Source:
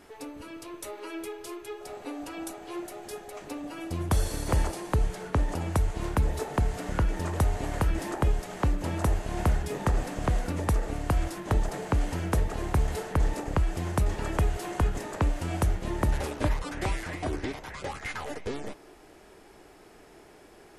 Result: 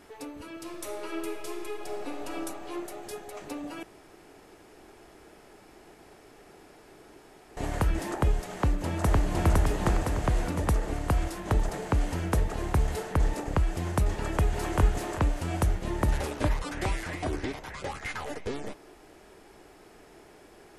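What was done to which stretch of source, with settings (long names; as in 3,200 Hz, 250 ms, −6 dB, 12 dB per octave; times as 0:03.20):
0:00.49–0:02.31: thrown reverb, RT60 2.9 s, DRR 2 dB
0:03.83–0:07.57: fill with room tone
0:08.52–0:09.45: delay throw 510 ms, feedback 55%, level 0 dB
0:14.13–0:14.79: delay throw 390 ms, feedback 25%, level −2 dB
0:16.08–0:17.43: one half of a high-frequency compander encoder only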